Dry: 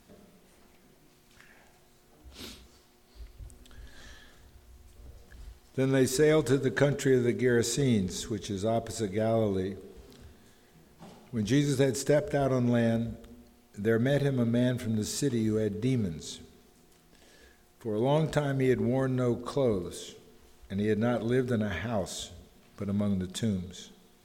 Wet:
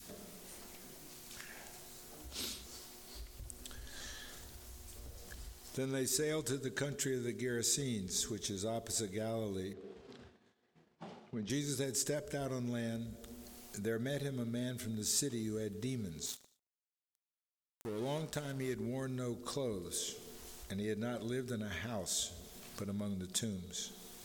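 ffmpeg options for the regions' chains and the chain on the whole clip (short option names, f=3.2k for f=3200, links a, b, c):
-filter_complex "[0:a]asettb=1/sr,asplit=3[a][b][c];[a]atrim=end=9.734[d];[b]atrim=start=9.73:end=11.5,asetpts=PTS-STARTPTS,afade=t=in:d=0.004:c=qsin,afade=t=out:st=1.766:d=0.004:c=qsin,highpass=120,lowpass=2.7k,agate=range=-33dB:threshold=-50dB:ratio=3:release=100:detection=peak[e];[c]atrim=start=11.496[f];[d][e]acrossfade=d=0.004:c1=hsin:c2=qsin[g];[g][f]acrossfade=d=0.004:c1=qsin:c2=hsin,asettb=1/sr,asplit=3[h][i][j];[h]atrim=end=16.264[k];[i]atrim=start=16.26:end=18.75,asetpts=PTS-STARTPTS,afade=t=in:d=0.004:c=qsin,afade=t=out:st=2.486:d=0.004:c=qsin,aeval=exprs='sgn(val(0))*max(abs(val(0))-0.00841,0)':c=same,aecho=1:1:74|148|222:0.0631|0.0259|0.0106,atrim=end_sample=109809[l];[j]atrim=start=18.746[m];[k][l]acrossfade=d=0.004:c1=hsin:c2=qsin[n];[n][m]acrossfade=d=0.004:c1=qsin:c2=hsin,adynamicequalizer=threshold=0.00891:dfrequency=680:dqfactor=0.82:tfrequency=680:tqfactor=0.82:attack=5:release=100:ratio=0.375:range=3:mode=cutabove:tftype=bell,acompressor=threshold=-53dB:ratio=2,bass=f=250:g=-3,treble=f=4k:g=9,volume=5.5dB"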